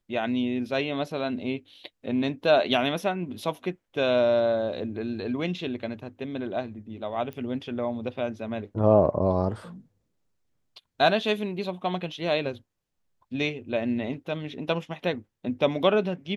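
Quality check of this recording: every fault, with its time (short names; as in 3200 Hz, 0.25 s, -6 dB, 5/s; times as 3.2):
7.33 pop -25 dBFS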